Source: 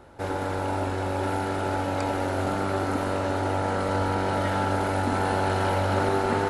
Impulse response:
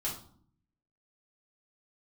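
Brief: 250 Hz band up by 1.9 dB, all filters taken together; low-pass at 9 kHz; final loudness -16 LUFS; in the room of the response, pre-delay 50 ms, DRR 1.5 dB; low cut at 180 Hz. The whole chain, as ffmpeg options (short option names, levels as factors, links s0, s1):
-filter_complex "[0:a]highpass=180,lowpass=9000,equalizer=f=250:t=o:g=3.5,asplit=2[s0][s1];[1:a]atrim=start_sample=2205,adelay=50[s2];[s1][s2]afir=irnorm=-1:irlink=0,volume=0.596[s3];[s0][s3]amix=inputs=2:normalize=0,volume=2.37"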